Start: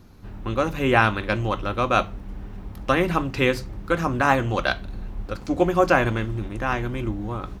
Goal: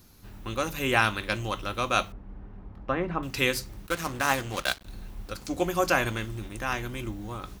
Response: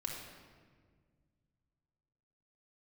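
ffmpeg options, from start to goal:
-filter_complex "[0:a]asettb=1/sr,asplit=3[a][b][c];[a]atrim=end=2.124[d];[b]atrim=start=2.12:end=3.23,asetpts=PTS-STARTPTS,afade=t=in:d=0.004:c=qsin,afade=t=out:st=1.106:d=0.004:c=qsin,lowpass=1.3k[e];[c]atrim=start=3.226[f];[d][e]acrossfade=d=0.004:c1=hsin:c2=qsin[g];[g][f]acrossfade=d=0.004:c1=qsin:c2=hsin,asplit=3[h][i][j];[h]afade=t=out:st=3.86:d=0.02[k];[i]aeval=exprs='sgn(val(0))*max(abs(val(0))-0.0224,0)':c=same,afade=t=in:st=3.86:d=0.02,afade=t=out:st=4.85:d=0.02[l];[j]afade=t=in:st=4.85:d=0.02[m];[k][l][m]amix=inputs=3:normalize=0,crystalizer=i=5:c=0,volume=-8dB"

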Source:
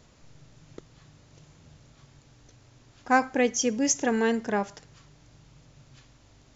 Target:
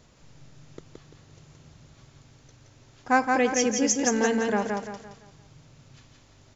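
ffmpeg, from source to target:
-af "aecho=1:1:171|342|513|684|855:0.668|0.254|0.0965|0.0367|0.0139"

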